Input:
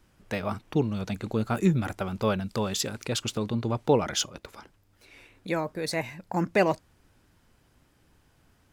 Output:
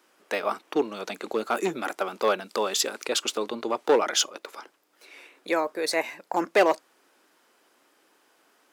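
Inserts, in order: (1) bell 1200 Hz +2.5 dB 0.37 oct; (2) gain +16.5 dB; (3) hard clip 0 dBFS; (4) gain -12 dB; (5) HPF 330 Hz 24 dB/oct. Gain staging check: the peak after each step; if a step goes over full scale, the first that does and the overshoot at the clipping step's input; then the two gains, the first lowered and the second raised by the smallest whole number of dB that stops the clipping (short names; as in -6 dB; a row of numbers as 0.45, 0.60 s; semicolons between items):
-9.0, +7.5, 0.0, -12.0, -7.0 dBFS; step 2, 7.5 dB; step 2 +8.5 dB, step 4 -4 dB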